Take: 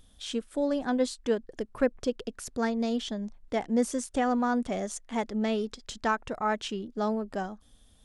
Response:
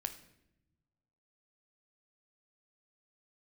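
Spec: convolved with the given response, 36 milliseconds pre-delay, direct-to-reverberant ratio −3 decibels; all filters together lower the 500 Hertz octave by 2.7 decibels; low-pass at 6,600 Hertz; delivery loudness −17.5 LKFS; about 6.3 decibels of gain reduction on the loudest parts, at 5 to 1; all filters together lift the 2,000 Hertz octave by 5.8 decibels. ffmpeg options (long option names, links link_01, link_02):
-filter_complex "[0:a]lowpass=6600,equalizer=frequency=500:width_type=o:gain=-3.5,equalizer=frequency=2000:width_type=o:gain=8,acompressor=threshold=-28dB:ratio=5,asplit=2[link_01][link_02];[1:a]atrim=start_sample=2205,adelay=36[link_03];[link_02][link_03]afir=irnorm=-1:irlink=0,volume=4dB[link_04];[link_01][link_04]amix=inputs=2:normalize=0,volume=11.5dB"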